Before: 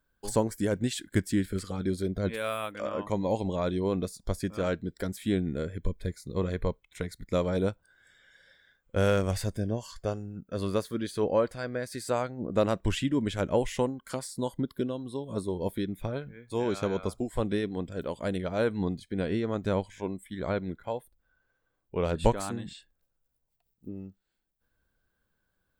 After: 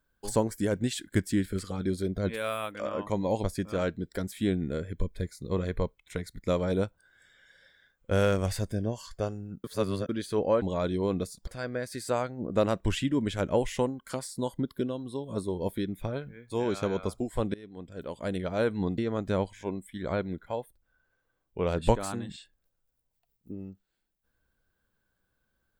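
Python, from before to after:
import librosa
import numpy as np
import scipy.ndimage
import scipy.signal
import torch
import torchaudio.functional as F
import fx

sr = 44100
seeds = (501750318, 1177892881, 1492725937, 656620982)

y = fx.edit(x, sr, fx.move(start_s=3.44, length_s=0.85, to_s=11.47),
    fx.reverse_span(start_s=10.49, length_s=0.45),
    fx.fade_in_from(start_s=17.54, length_s=0.88, floor_db=-23.5),
    fx.cut(start_s=18.98, length_s=0.37), tone=tone)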